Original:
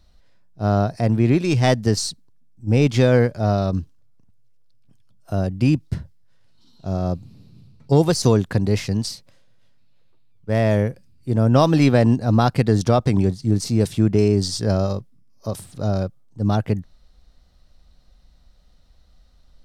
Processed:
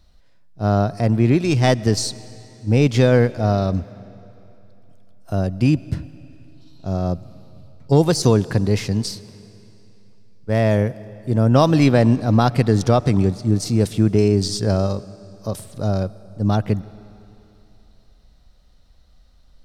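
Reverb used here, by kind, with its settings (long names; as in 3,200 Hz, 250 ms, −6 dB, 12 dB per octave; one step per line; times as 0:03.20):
comb and all-pass reverb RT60 3.1 s, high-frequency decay 0.95×, pre-delay 70 ms, DRR 19 dB
level +1 dB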